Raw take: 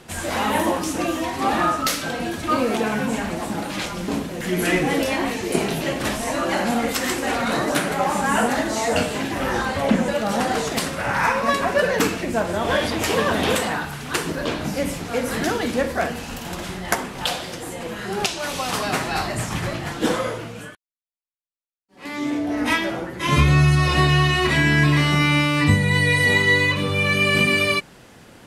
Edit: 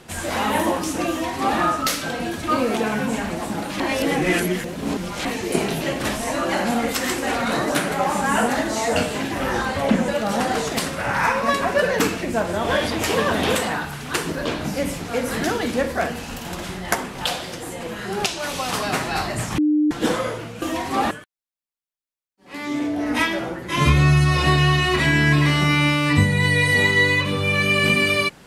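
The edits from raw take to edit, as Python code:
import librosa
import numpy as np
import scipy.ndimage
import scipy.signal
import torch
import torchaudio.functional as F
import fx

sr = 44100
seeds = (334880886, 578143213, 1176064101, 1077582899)

y = fx.edit(x, sr, fx.duplicate(start_s=1.1, length_s=0.49, to_s=20.62),
    fx.reverse_span(start_s=3.8, length_s=1.45),
    fx.bleep(start_s=19.58, length_s=0.33, hz=301.0, db=-14.5), tone=tone)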